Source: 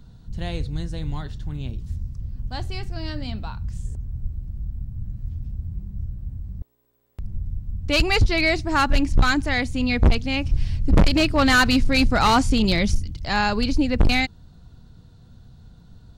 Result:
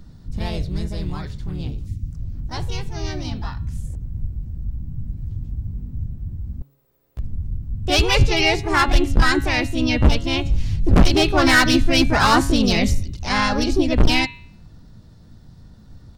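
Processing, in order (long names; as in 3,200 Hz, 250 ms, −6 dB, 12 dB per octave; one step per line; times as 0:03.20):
pitch-shifted copies added +3 semitones −17 dB, +4 semitones −1 dB
hum removal 138.1 Hz, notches 31
gain on a spectral selection 0:01.87–0:02.11, 380–1,800 Hz −25 dB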